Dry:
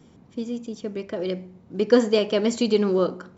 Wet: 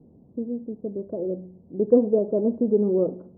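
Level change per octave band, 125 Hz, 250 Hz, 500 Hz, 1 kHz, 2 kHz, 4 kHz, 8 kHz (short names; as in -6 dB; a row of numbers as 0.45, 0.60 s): -1.0 dB, 0.0 dB, -0.5 dB, -10.0 dB, under -35 dB, under -40 dB, n/a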